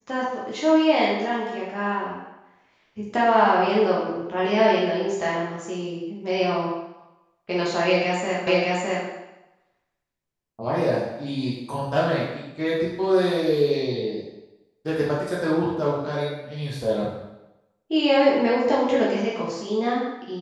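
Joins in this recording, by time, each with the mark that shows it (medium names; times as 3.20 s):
8.47 s: repeat of the last 0.61 s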